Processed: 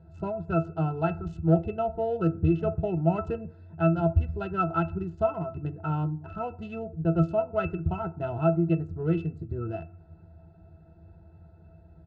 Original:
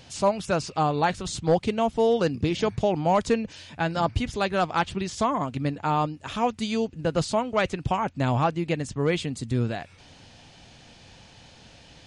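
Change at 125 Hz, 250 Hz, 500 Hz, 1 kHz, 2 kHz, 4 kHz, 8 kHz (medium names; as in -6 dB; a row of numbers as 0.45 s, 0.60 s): +2.0 dB, -0.5 dB, -3.5 dB, -7.5 dB, -10.0 dB, under -20 dB, under -30 dB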